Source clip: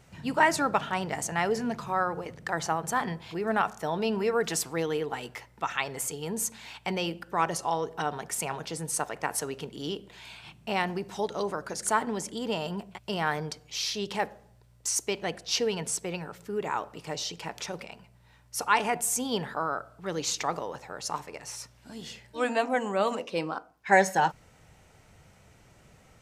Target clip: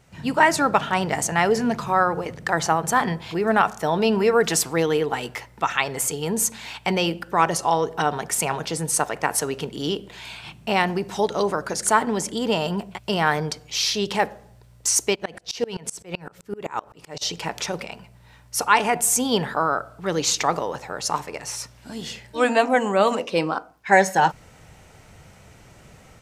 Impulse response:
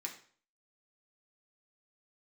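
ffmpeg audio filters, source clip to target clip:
-filter_complex "[0:a]dynaudnorm=f=110:g=3:m=8.5dB,asplit=3[a][b][c];[a]afade=t=out:st=15.14:d=0.02[d];[b]aeval=exprs='val(0)*pow(10,-27*if(lt(mod(-7.8*n/s,1),2*abs(-7.8)/1000),1-mod(-7.8*n/s,1)/(2*abs(-7.8)/1000),(mod(-7.8*n/s,1)-2*abs(-7.8)/1000)/(1-2*abs(-7.8)/1000))/20)':c=same,afade=t=in:st=15.14:d=0.02,afade=t=out:st=17.21:d=0.02[e];[c]afade=t=in:st=17.21:d=0.02[f];[d][e][f]amix=inputs=3:normalize=0"

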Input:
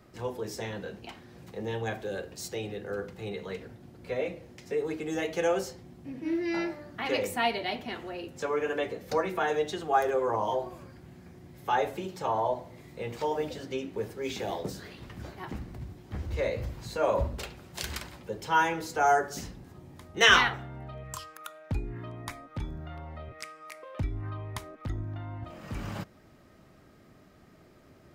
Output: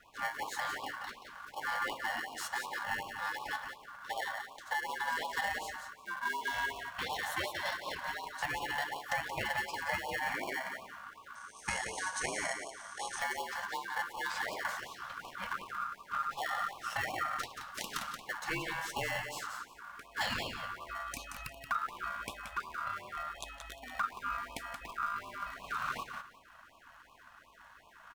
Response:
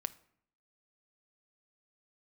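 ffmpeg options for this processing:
-filter_complex "[0:a]bandreject=f=50:t=h:w=6,bandreject=f=100:t=h:w=6,bandreject=f=150:t=h:w=6,bandreject=f=200:t=h:w=6,bandreject=f=250:t=h:w=6,bandreject=f=300:t=h:w=6,bandreject=f=350:t=h:w=6,acompressor=threshold=-31dB:ratio=20,asplit=2[a][b];[b]acrusher=samples=36:mix=1:aa=0.000001,volume=-3dB[c];[a][c]amix=inputs=2:normalize=0,asettb=1/sr,asplit=3[d][e][f];[d]atrim=end=11.354[g];[e]atrim=start=11.35:end=13.19,asetpts=PTS-STARTPTS,afade=t=in:d=0.004:c=qsin,afade=t=out:st=1.836:d=0.004:c=qsin,lowpass=f=7.5k:t=q:w=15[h];[f]atrim=start=13.186[i];[g][h]acrossfade=d=0.004:c1=hsin:c2=qsin[j];[j][i]acrossfade=d=0.004:c1=qsin:c2=hsin,aeval=exprs='val(0)*sin(2*PI*1300*n/s)':c=same,aecho=1:1:177|354|531:0.447|0.0893|0.0179,afftfilt=real='re*(1-between(b*sr/1024,330*pow(1700/330,0.5+0.5*sin(2*PI*2.7*pts/sr))/1.41,330*pow(1700/330,0.5+0.5*sin(2*PI*2.7*pts/sr))*1.41))':imag='im*(1-between(b*sr/1024,330*pow(1700/330,0.5+0.5*sin(2*PI*2.7*pts/sr))/1.41,330*pow(1700/330,0.5+0.5*sin(2*PI*2.7*pts/sr))*1.41))':win_size=1024:overlap=0.75"

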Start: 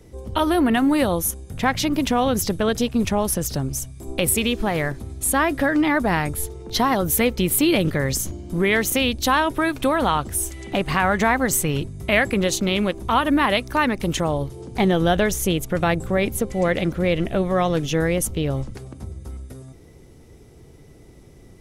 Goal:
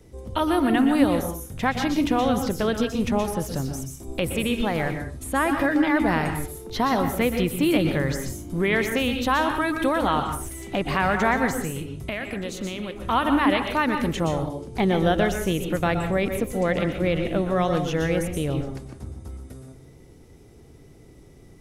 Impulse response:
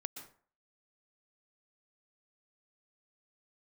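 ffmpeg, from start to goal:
-filter_complex "[0:a]asettb=1/sr,asplit=3[a][b][c];[a]atrim=end=11.604[d];[b]atrim=start=11.6:end=12.96,asetpts=PTS-STARTPTS,afade=t=in:d=0.004:c=qsin,afade=t=out:st=1.356:d=0.004:c=qsin,acompressor=threshold=-24dB:ratio=10[e];[c]atrim=start=12.956[f];[d][e]acrossfade=d=0.004:c1=hsin:c2=qsin[g];[g][f]acrossfade=d=0.004:c1=qsin:c2=hsin[h];[1:a]atrim=start_sample=2205,afade=t=out:st=0.33:d=0.01,atrim=end_sample=14994[i];[h][i]afir=irnorm=-1:irlink=0,acrossover=split=3100[j][k];[k]acompressor=threshold=-35dB:ratio=4:attack=1:release=60[l];[j][l]amix=inputs=2:normalize=0"

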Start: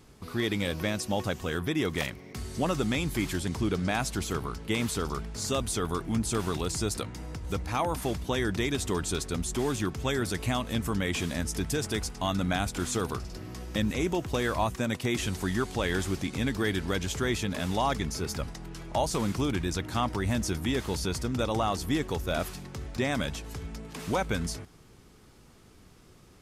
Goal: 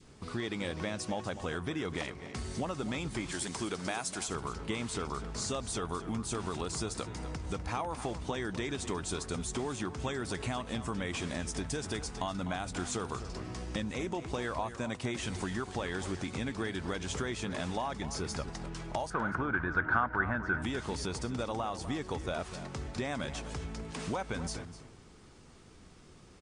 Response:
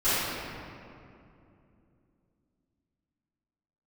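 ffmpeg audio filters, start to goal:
-filter_complex "[0:a]asettb=1/sr,asplit=3[a][b][c];[a]atrim=end=3.324[d];[b]atrim=start=3.32:end=4.28,asetpts=PTS-STARTPTS,afade=t=in:d=0.004:c=qsin,afade=t=out:st=0.956:d=0.004:c=qsin,aemphasis=mode=production:type=bsi[e];[c]atrim=start=4.276[f];[d][e]acrossfade=d=0.004:c1=hsin:c2=qsin[g];[g][f]acrossfade=d=0.004:c1=qsin:c2=hsin,bandreject=f=50:t=h:w=6,bandreject=f=100:t=h:w=6,adynamicequalizer=threshold=0.00891:dfrequency=900:dqfactor=0.85:tfrequency=900:tqfactor=0.85:attack=5:release=100:ratio=0.375:range=2.5:mode=boostabove:tftype=bell,acompressor=threshold=-32dB:ratio=6,asettb=1/sr,asplit=3[h][i][j];[h]atrim=end=19.104[k];[i]atrim=start=19.1:end=20.62,asetpts=PTS-STARTPTS,afade=t=in:d=0.004:c=qsin,afade=t=out:st=1.516:d=0.004:c=qsin,lowpass=f=1.5k:t=q:w=11[l];[j]atrim=start=20.616[m];[k][l]acrossfade=d=0.004:c1=hsin:c2=qsin[n];[n][m]acrossfade=d=0.004:c1=qsin:c2=hsin,asplit=2[o][p];[p]adelay=250.7,volume=-12dB,highshelf=f=4k:g=-5.64[q];[o][q]amix=inputs=2:normalize=0" -ar 22050 -c:a libmp3lame -b:a 56k

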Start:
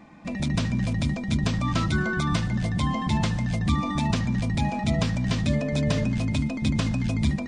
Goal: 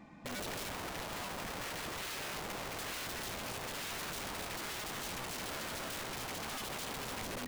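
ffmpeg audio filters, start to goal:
-filter_complex "[0:a]asettb=1/sr,asplit=3[a][b][c];[a]atrim=end=0.694[d];[b]atrim=start=0.69:end=2.7,asetpts=PTS-STARTPTS,afade=t=in:d=0.004:c=qsin,afade=t=out:st=2.006:d=0.004:c=qsin,lowpass=1.5k[e];[c]atrim=start=2.696[f];[d][e]acrossfade=d=0.004:c1=hsin:c2=qsin[g];[g][f]acrossfade=d=0.004:c1=qsin:c2=hsin,alimiter=level_in=5.5dB:limit=-24dB:level=0:latency=1:release=18,volume=-5.5dB,dynaudnorm=f=190:g=5:m=6dB,aeval=exprs='(mod(33.5*val(0)+1,2)-1)/33.5':c=same,volume=-6dB"

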